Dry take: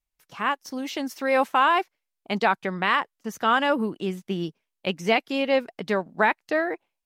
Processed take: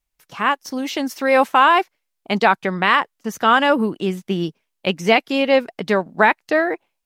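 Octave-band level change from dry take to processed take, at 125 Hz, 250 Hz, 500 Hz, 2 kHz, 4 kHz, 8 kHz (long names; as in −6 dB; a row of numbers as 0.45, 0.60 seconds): +6.5, +6.5, +6.5, +6.5, +6.5, +6.5 decibels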